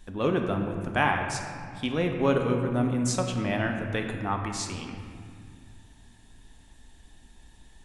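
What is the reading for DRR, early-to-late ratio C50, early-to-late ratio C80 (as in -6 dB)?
3.0 dB, 5.0 dB, 6.0 dB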